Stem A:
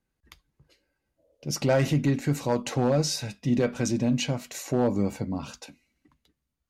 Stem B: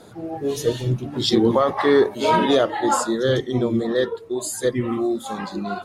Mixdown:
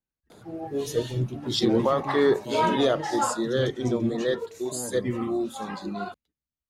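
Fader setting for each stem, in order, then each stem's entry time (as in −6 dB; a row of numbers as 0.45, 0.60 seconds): −13.5, −5.0 decibels; 0.00, 0.30 seconds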